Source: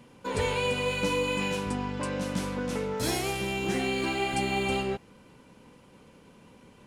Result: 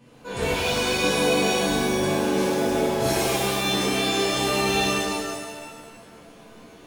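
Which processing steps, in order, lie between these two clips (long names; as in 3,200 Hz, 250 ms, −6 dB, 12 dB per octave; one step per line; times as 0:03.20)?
0:02.00–0:02.67: high-pass filter 93 Hz 24 dB per octave
reverb with rising layers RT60 1.4 s, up +7 semitones, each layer −2 dB, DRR −8.5 dB
level −5 dB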